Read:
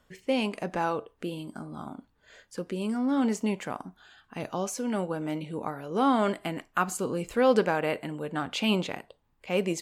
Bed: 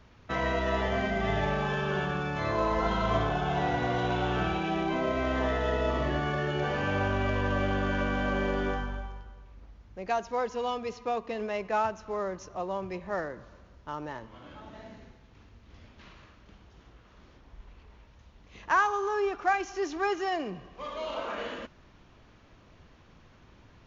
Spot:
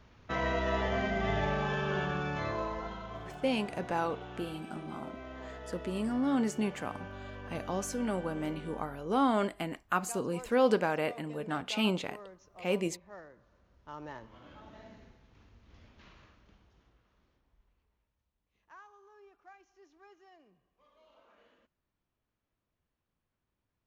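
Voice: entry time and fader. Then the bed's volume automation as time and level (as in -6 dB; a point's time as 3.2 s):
3.15 s, -3.5 dB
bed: 2.35 s -2.5 dB
3.09 s -16.5 dB
13.42 s -16.5 dB
14.09 s -5.5 dB
16.26 s -5.5 dB
18.33 s -29.5 dB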